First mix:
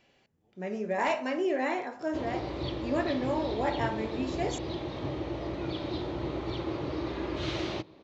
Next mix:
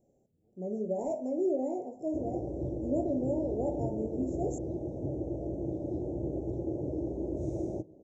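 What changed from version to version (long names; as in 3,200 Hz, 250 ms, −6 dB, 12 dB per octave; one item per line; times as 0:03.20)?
master: add inverse Chebyshev band-stop filter 1,100–4,600 Hz, stop band 40 dB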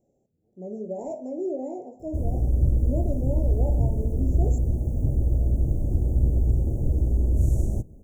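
background: remove loudspeaker in its box 230–4,800 Hz, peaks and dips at 230 Hz −10 dB, 330 Hz +8 dB, 600 Hz +4 dB, 1,500 Hz −6 dB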